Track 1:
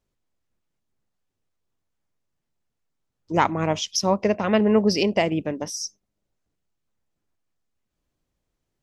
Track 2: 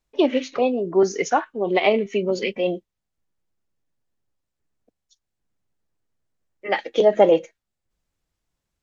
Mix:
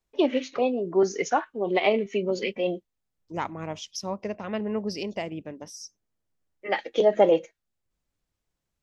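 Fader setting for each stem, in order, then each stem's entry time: -11.0 dB, -4.0 dB; 0.00 s, 0.00 s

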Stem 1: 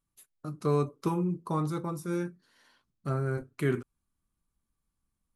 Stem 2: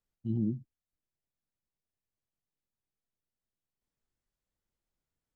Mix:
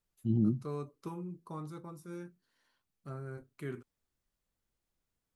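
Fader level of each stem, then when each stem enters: -12.5 dB, +2.5 dB; 0.00 s, 0.00 s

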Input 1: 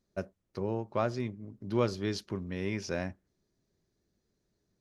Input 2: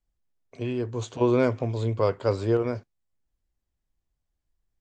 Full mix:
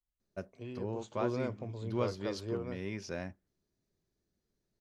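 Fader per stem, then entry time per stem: -5.5 dB, -14.0 dB; 0.20 s, 0.00 s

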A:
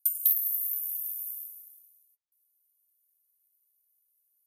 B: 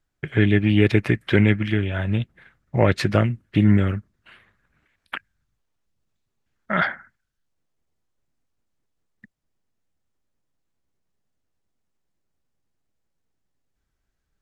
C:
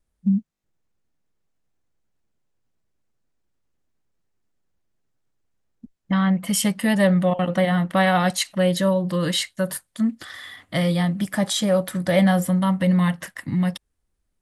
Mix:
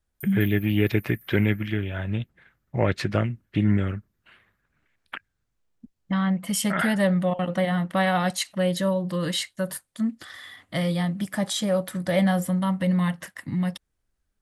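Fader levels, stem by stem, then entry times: -19.0 dB, -5.0 dB, -4.0 dB; 0.15 s, 0.00 s, 0.00 s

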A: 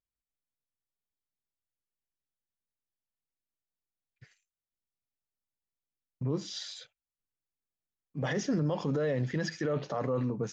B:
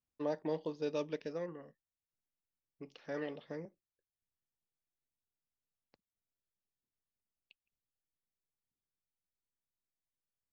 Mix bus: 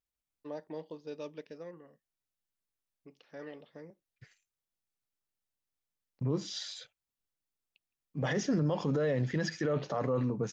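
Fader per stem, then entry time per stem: 0.0 dB, -5.5 dB; 0.00 s, 0.25 s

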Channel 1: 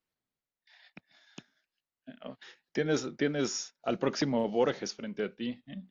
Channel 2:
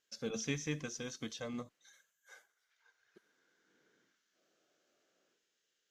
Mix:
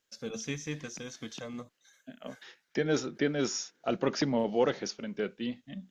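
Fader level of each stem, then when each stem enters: +0.5 dB, +1.0 dB; 0.00 s, 0.00 s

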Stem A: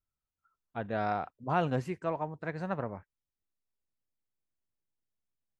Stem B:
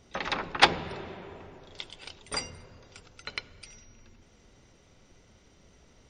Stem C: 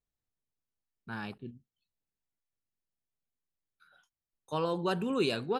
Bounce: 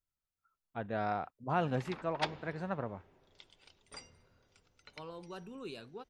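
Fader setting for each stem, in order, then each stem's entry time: -3.0 dB, -17.0 dB, -15.5 dB; 0.00 s, 1.60 s, 0.45 s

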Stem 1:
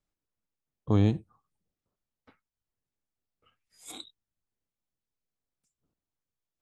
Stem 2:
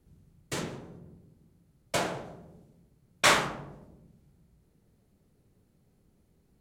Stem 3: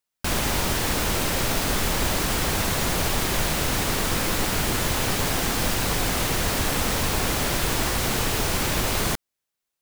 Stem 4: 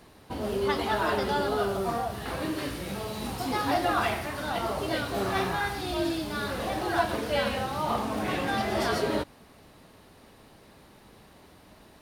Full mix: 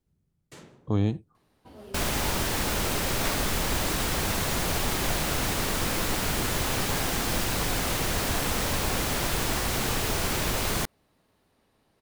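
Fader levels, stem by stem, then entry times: -1.5 dB, -14.0 dB, -3.5 dB, -15.0 dB; 0.00 s, 0.00 s, 1.70 s, 1.35 s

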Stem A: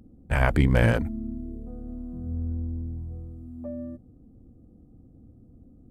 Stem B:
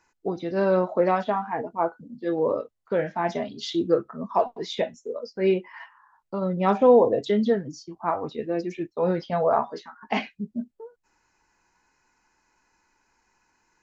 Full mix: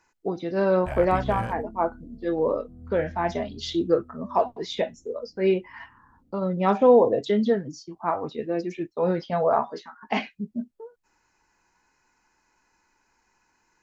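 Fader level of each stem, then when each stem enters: -11.0 dB, 0.0 dB; 0.55 s, 0.00 s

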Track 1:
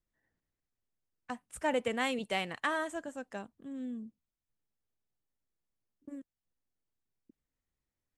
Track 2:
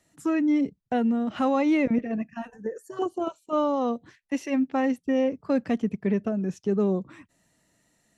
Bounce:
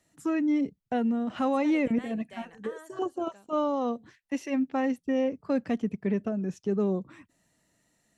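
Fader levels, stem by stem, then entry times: -14.5 dB, -3.0 dB; 0.00 s, 0.00 s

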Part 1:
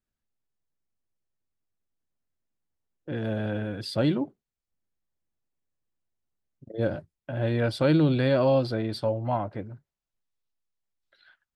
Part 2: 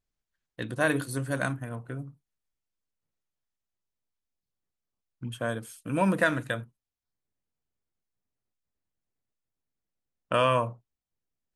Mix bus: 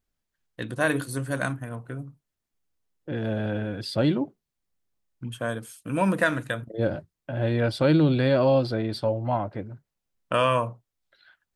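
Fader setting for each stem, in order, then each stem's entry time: +1.5 dB, +1.5 dB; 0.00 s, 0.00 s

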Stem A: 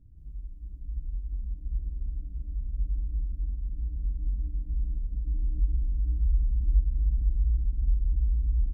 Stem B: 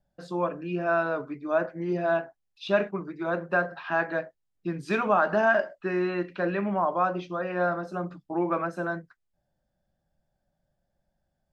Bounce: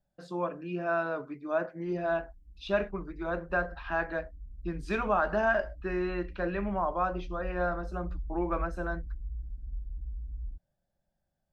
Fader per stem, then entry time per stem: -13.0 dB, -4.5 dB; 1.85 s, 0.00 s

